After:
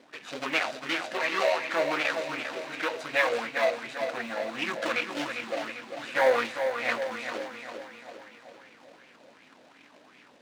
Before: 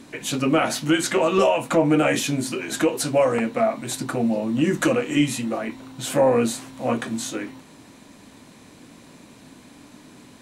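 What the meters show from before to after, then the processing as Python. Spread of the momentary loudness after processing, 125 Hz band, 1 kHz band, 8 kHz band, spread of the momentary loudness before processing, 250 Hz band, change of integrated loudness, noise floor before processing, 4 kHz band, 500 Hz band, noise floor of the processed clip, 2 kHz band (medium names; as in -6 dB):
14 LU, -23.5 dB, -4.5 dB, -16.5 dB, 10 LU, -17.5 dB, -7.0 dB, -49 dBFS, -4.5 dB, -7.5 dB, -57 dBFS, +1.0 dB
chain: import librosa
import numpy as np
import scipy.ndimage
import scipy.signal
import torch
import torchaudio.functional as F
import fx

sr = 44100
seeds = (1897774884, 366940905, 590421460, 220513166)

p1 = scipy.ndimage.median_filter(x, 41, mode='constant')
p2 = scipy.signal.sosfilt(scipy.signal.butter(2, 4200.0, 'lowpass', fs=sr, output='sos'), p1)
p3 = p2 + fx.echo_single(p2, sr, ms=214, db=-22.5, dry=0)
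p4 = fx.rider(p3, sr, range_db=4, speed_s=2.0)
p5 = np.clip(p4, -10.0 ** (-19.5 / 20.0), 10.0 ** (-19.5 / 20.0))
p6 = p4 + (p5 * 10.0 ** (-10.0 / 20.0))
p7 = fx.low_shelf(p6, sr, hz=480.0, db=-10.5)
p8 = fx.quant_float(p7, sr, bits=8)
p9 = fx.tilt_eq(p8, sr, slope=4.5)
p10 = fx.echo_feedback(p9, sr, ms=399, feedback_pct=54, wet_db=-7.5)
p11 = fx.bell_lfo(p10, sr, hz=2.7, low_hz=530.0, high_hz=2500.0, db=11)
y = p11 * 10.0 ** (-5.0 / 20.0)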